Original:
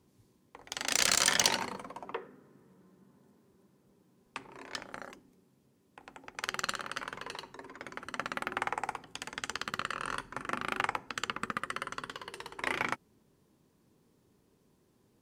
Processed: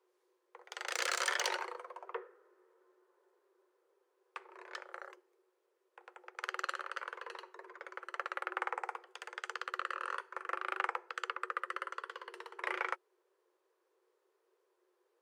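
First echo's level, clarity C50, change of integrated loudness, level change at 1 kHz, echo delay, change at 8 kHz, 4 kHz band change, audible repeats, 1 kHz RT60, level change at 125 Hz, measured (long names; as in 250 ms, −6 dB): no echo audible, no reverb audible, −6.0 dB, −2.5 dB, no echo audible, −12.5 dB, −9.5 dB, no echo audible, no reverb audible, below −40 dB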